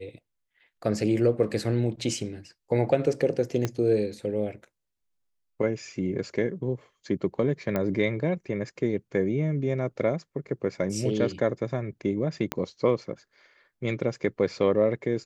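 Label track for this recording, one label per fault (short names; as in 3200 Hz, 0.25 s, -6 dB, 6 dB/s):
3.650000	3.650000	pop -13 dBFS
7.760000	7.760000	pop -15 dBFS
12.520000	12.520000	pop -12 dBFS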